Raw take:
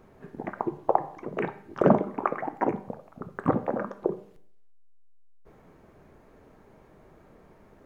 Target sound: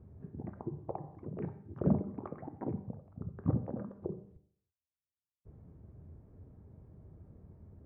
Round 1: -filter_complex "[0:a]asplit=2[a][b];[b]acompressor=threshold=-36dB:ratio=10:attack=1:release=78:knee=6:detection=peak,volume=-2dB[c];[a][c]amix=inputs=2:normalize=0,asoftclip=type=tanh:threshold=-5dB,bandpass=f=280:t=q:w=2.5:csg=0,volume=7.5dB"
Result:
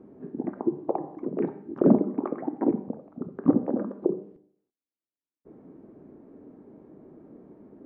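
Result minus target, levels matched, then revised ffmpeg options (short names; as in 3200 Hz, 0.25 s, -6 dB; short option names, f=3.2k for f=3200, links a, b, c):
125 Hz band -11.5 dB
-filter_complex "[0:a]asplit=2[a][b];[b]acompressor=threshold=-36dB:ratio=10:attack=1:release=78:knee=6:detection=peak,volume=-2dB[c];[a][c]amix=inputs=2:normalize=0,asoftclip=type=tanh:threshold=-5dB,bandpass=f=88:t=q:w=2.5:csg=0,volume=7.5dB"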